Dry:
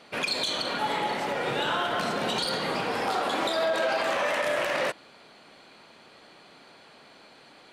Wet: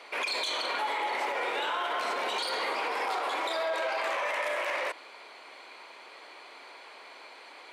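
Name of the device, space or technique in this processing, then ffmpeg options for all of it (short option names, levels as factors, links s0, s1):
laptop speaker: -af "highpass=f=350:w=0.5412,highpass=f=350:w=1.3066,equalizer=f=1000:t=o:w=0.4:g=7,equalizer=f=2200:t=o:w=0.36:g=8,alimiter=level_in=1.06:limit=0.0631:level=0:latency=1:release=54,volume=0.944,volume=1.19"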